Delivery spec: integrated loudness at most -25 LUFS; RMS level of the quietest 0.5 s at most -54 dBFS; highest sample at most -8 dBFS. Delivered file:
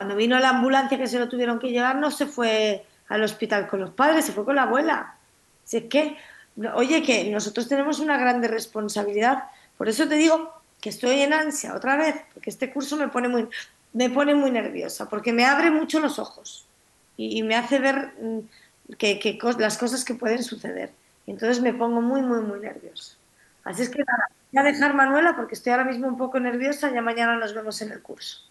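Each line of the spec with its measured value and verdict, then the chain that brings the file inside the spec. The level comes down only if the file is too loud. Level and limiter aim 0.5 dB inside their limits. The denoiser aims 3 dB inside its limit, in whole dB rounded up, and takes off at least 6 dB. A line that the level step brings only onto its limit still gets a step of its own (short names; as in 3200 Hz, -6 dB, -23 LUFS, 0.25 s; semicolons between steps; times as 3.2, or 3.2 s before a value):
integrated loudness -23.0 LUFS: fail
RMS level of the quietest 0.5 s -61 dBFS: OK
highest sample -5.5 dBFS: fail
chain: gain -2.5 dB; limiter -8.5 dBFS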